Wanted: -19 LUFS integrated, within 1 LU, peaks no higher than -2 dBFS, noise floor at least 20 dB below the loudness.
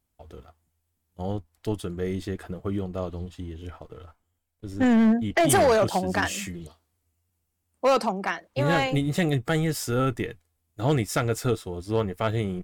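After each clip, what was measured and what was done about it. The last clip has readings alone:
clipped samples 1.2%; clipping level -15.0 dBFS; loudness -25.5 LUFS; peak level -15.0 dBFS; loudness target -19.0 LUFS
-> clip repair -15 dBFS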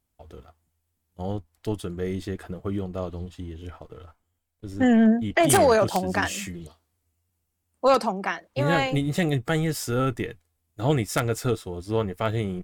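clipped samples 0.0%; loudness -24.5 LUFS; peak level -6.0 dBFS; loudness target -19.0 LUFS
-> trim +5.5 dB; peak limiter -2 dBFS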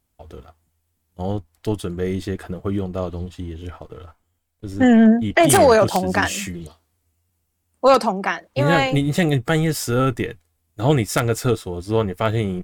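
loudness -19.0 LUFS; peak level -2.0 dBFS; noise floor -71 dBFS

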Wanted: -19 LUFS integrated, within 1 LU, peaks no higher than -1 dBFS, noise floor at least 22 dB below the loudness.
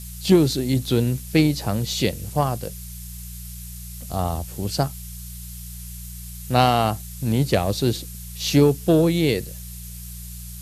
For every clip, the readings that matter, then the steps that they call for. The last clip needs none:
hum 60 Hz; highest harmonic 180 Hz; hum level -35 dBFS; noise floor -36 dBFS; noise floor target -44 dBFS; loudness -21.5 LUFS; peak level -2.0 dBFS; loudness target -19.0 LUFS
-> de-hum 60 Hz, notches 3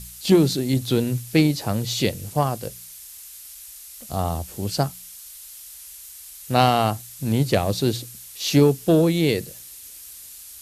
hum not found; noise floor -42 dBFS; noise floor target -44 dBFS
-> noise reduction 6 dB, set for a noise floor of -42 dBFS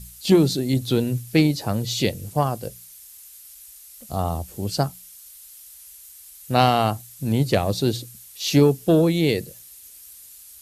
noise floor -45 dBFS; loudness -22.0 LUFS; peak level -2.0 dBFS; loudness target -19.0 LUFS
-> trim +3 dB; peak limiter -1 dBFS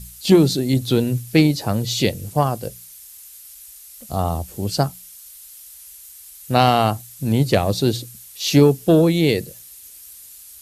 loudness -19.0 LUFS; peak level -1.0 dBFS; noise floor -42 dBFS

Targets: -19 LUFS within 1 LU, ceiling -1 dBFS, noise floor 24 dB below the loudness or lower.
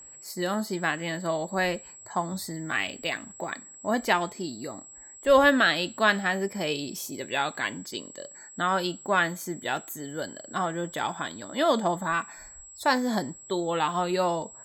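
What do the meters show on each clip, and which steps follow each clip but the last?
steady tone 7.7 kHz; tone level -45 dBFS; loudness -27.5 LUFS; peak level -8.0 dBFS; loudness target -19.0 LUFS
-> band-stop 7.7 kHz, Q 30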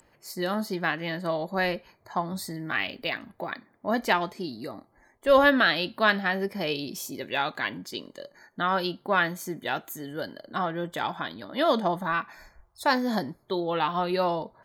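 steady tone not found; loudness -27.5 LUFS; peak level -8.0 dBFS; loudness target -19.0 LUFS
-> trim +8.5 dB; peak limiter -1 dBFS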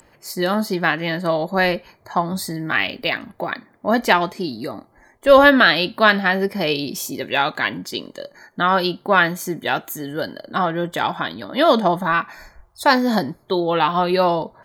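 loudness -19.0 LUFS; peak level -1.0 dBFS; noise floor -56 dBFS

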